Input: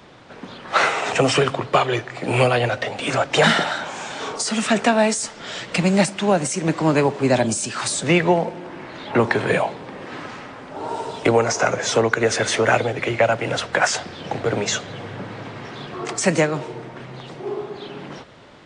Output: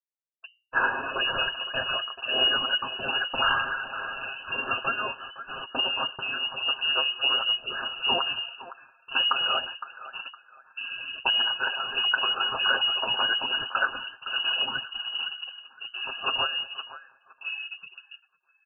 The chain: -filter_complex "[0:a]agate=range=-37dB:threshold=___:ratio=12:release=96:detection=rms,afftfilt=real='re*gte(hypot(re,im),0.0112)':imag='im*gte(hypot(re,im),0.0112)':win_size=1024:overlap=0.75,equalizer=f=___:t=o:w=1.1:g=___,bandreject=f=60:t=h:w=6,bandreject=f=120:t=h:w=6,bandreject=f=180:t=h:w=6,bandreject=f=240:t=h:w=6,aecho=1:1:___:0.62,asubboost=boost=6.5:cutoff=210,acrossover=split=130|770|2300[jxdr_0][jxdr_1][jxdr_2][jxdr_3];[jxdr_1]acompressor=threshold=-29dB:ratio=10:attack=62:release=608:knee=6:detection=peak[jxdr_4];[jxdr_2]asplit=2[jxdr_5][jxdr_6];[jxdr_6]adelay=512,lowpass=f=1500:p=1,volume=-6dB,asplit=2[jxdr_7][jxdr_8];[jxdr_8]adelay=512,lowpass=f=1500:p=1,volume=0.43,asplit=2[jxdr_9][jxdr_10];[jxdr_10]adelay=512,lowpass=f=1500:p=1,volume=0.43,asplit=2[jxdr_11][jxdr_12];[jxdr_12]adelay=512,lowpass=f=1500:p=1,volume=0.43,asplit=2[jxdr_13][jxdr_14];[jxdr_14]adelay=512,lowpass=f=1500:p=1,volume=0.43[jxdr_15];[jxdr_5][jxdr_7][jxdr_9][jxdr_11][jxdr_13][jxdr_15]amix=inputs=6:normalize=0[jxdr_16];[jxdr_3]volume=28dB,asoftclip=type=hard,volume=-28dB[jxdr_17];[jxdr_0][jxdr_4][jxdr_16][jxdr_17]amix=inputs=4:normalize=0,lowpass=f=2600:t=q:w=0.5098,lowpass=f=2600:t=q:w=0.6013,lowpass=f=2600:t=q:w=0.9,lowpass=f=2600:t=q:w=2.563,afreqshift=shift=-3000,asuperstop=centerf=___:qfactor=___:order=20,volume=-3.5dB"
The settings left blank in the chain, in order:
-31dB, 160, -9, 7.3, 2100, 2.4